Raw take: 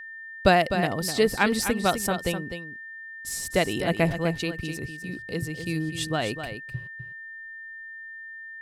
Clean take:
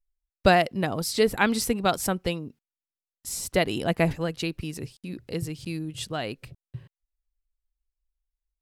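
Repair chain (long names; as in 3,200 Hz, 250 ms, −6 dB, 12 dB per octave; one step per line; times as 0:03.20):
notch filter 1,800 Hz, Q 30
echo removal 253 ms −9 dB
level 0 dB, from 0:05.67 −3.5 dB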